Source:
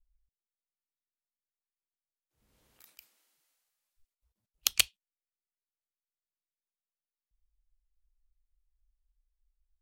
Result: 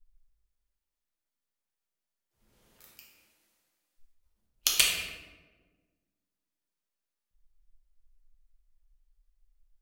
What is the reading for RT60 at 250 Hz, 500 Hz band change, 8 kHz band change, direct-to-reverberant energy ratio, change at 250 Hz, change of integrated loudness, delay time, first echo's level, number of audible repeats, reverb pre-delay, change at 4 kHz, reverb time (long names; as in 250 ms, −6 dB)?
2.0 s, +6.5 dB, +3.5 dB, −3.5 dB, +6.5 dB, +2.5 dB, no echo audible, no echo audible, no echo audible, 5 ms, +4.0 dB, 1.4 s